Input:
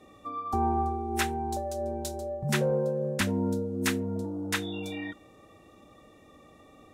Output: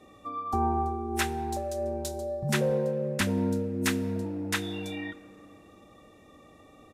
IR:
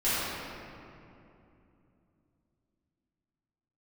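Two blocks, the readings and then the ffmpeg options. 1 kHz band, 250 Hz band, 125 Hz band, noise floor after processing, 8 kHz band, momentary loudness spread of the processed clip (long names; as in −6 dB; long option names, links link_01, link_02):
−0.5 dB, +0.5 dB, +0.5 dB, −55 dBFS, +0.5 dB, 9 LU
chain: -filter_complex "[0:a]aresample=32000,aresample=44100,asplit=2[link_01][link_02];[1:a]atrim=start_sample=2205,highshelf=frequency=5600:gain=8[link_03];[link_02][link_03]afir=irnorm=-1:irlink=0,volume=-30dB[link_04];[link_01][link_04]amix=inputs=2:normalize=0"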